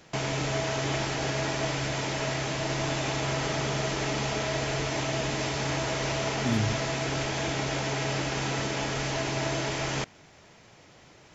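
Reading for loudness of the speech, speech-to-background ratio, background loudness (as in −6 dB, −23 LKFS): −32.5 LKFS, −3.0 dB, −29.5 LKFS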